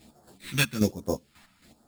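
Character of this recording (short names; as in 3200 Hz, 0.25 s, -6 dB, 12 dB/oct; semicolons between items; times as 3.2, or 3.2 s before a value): aliases and images of a low sample rate 6000 Hz, jitter 0%; phasing stages 2, 1.2 Hz, lowest notch 420–2400 Hz; chopped level 3.7 Hz, depth 65%, duty 35%; a shimmering, thickened sound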